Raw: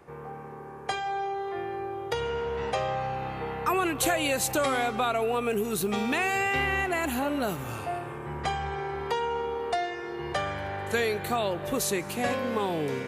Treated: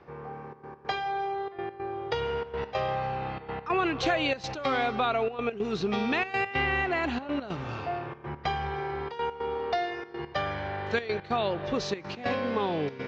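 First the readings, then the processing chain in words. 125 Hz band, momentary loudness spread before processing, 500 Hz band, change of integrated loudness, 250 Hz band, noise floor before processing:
−0.5 dB, 9 LU, −1.5 dB, −1.5 dB, −1.0 dB, −41 dBFS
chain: Butterworth low-pass 5,500 Hz 48 dB per octave
gate pattern "xxxxx.x.x" 142 BPM −12 dB

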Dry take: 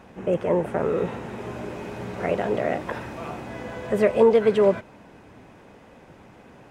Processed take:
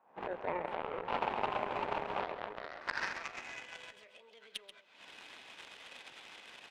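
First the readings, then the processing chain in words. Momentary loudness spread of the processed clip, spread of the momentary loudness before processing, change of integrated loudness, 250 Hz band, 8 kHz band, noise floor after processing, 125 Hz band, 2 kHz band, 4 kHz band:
17 LU, 17 LU, −15.5 dB, −21.5 dB, can't be measured, −64 dBFS, −22.0 dB, −5.5 dB, −2.5 dB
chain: camcorder AGC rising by 78 dB per second
high-pass filter 45 Hz 24 dB per octave
low-shelf EQ 120 Hz −6 dB
brickwall limiter −15.5 dBFS, peak gain reduction 10.5 dB
band-pass filter sweep 910 Hz → 3,500 Hz, 0:02.19–0:03.96
harmonic generator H 7 −18 dB, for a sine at −14.5 dBFS
slap from a distant wall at 23 metres, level −10 dB
level +2.5 dB

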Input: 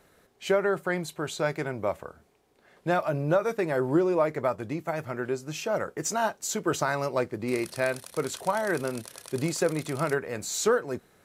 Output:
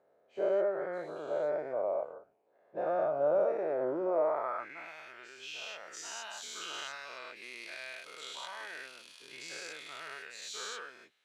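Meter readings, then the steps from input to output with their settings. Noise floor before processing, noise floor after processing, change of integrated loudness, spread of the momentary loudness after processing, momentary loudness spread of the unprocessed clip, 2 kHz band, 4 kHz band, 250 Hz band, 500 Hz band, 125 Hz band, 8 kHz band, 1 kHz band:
−64 dBFS, −69 dBFS, −7.0 dB, 16 LU, 8 LU, −10.0 dB, −3.5 dB, −15.0 dB, −5.5 dB, −25.0 dB, −12.0 dB, −8.0 dB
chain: every bin's largest magnitude spread in time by 240 ms
band-pass filter sweep 600 Hz → 3,100 Hz, 0:04.18–0:04.94
level −7.5 dB

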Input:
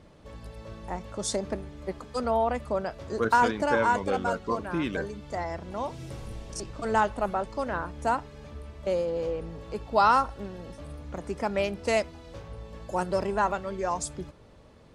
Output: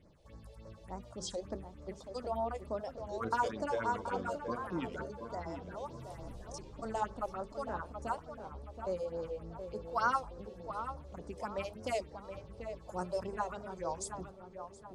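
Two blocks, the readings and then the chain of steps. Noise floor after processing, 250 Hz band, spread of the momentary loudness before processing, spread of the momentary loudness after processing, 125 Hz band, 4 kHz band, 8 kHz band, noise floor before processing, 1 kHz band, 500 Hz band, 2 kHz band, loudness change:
−54 dBFS, −10.5 dB, 19 LU, 14 LU, −9.0 dB, −10.5 dB, −10.0 dB, −53 dBFS, −10.0 dB, −9.5 dB, −11.5 dB, −10.5 dB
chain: mains-hum notches 50/100/150/200/250/300/350/400/450 Hz
all-pass phaser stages 4, 3.4 Hz, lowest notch 200–3,100 Hz
dynamic equaliser 1,200 Hz, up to +6 dB, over −47 dBFS, Q 4.8
on a send: tape delay 725 ms, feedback 47%, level −7 dB, low-pass 1,600 Hz
on the sum: wow of a warped record 33 1/3 rpm, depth 160 cents
level −8.5 dB

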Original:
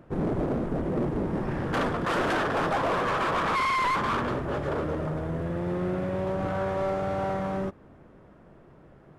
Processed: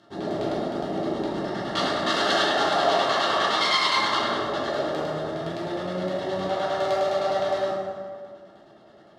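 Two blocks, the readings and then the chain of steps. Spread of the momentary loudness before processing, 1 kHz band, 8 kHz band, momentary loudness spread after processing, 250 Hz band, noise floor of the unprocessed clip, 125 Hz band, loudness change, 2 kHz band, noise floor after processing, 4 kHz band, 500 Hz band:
6 LU, +3.0 dB, +9.0 dB, 9 LU, −1.0 dB, −54 dBFS, −6.5 dB, +3.5 dB, +3.5 dB, −51 dBFS, +14.0 dB, +4.0 dB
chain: Butterworth band-reject 2,400 Hz, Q 4.5
RIAA equalisation recording
on a send: flutter between parallel walls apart 7.4 metres, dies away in 0.22 s
on the sum: auto-filter low-pass square 9.7 Hz 640–4,000 Hz
high-shelf EQ 3,300 Hz +9.5 dB
notch comb filter 500 Hz
dense smooth reverb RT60 1.9 s, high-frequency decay 0.55×, DRR −5.5 dB
level −3.5 dB

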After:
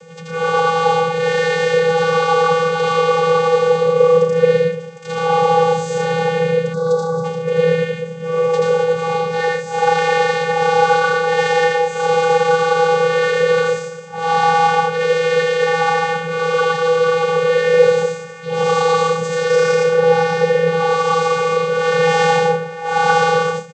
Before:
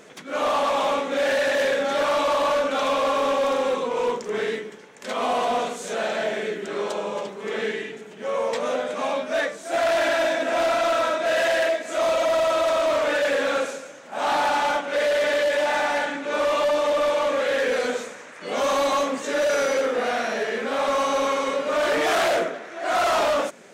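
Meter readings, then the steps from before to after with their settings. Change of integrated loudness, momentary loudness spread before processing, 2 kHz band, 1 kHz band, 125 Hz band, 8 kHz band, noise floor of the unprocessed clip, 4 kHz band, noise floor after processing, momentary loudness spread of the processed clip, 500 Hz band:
+7.5 dB, 8 LU, +6.5 dB, +8.0 dB, can't be measured, +3.0 dB, −42 dBFS, +4.0 dB, −30 dBFS, 6 LU, +8.0 dB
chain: high-shelf EQ 4,000 Hz +9 dB
on a send: loudspeakers that aren't time-aligned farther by 28 metres −1 dB, 39 metres −4 dB, 51 metres −9 dB
on the sum: time-frequency box erased 0:06.73–0:07.24, 1,400–3,900 Hz
channel vocoder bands 16, square 164 Hz
level +4.5 dB

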